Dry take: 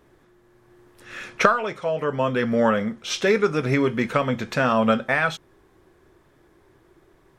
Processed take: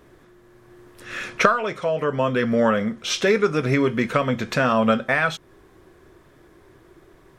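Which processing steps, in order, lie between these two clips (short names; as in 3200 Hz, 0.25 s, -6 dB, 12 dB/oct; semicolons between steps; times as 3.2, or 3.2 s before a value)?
in parallel at +1 dB: compressor, threshold -31 dBFS, peak gain reduction 18.5 dB; on the sum: notch 850 Hz, Q 12; gain -1 dB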